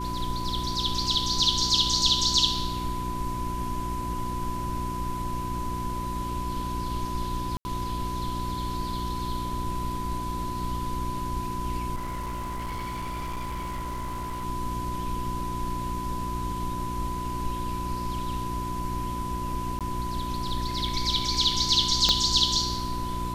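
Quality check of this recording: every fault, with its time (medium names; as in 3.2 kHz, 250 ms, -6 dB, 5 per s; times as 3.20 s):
hum 60 Hz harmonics 6 -34 dBFS
whine 1 kHz -32 dBFS
7.57–7.65 s: dropout 80 ms
11.95–14.45 s: clipped -29 dBFS
19.79–19.81 s: dropout 17 ms
22.09 s: pop -9 dBFS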